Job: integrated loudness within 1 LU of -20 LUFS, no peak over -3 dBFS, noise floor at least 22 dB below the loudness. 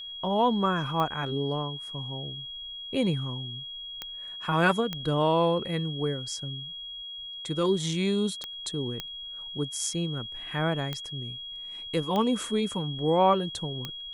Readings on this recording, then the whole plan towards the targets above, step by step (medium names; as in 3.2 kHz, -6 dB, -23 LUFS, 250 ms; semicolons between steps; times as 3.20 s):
clicks found 8; steady tone 3.3 kHz; tone level -37 dBFS; loudness -29.0 LUFS; peak level -8.5 dBFS; loudness target -20.0 LUFS
-> de-click; band-stop 3.3 kHz, Q 30; trim +9 dB; peak limiter -3 dBFS